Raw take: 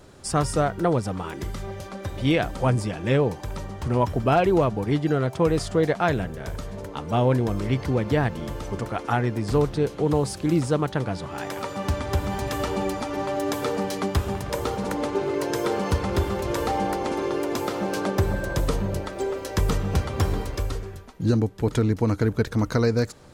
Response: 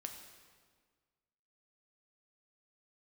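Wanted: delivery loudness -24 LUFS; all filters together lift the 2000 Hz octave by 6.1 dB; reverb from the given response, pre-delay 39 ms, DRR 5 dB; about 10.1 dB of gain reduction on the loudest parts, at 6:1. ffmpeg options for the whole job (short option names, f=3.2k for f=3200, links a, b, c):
-filter_complex "[0:a]equalizer=f=2k:t=o:g=8,acompressor=threshold=-27dB:ratio=6,asplit=2[a][b];[1:a]atrim=start_sample=2205,adelay=39[c];[b][c]afir=irnorm=-1:irlink=0,volume=-2dB[d];[a][d]amix=inputs=2:normalize=0,volume=6.5dB"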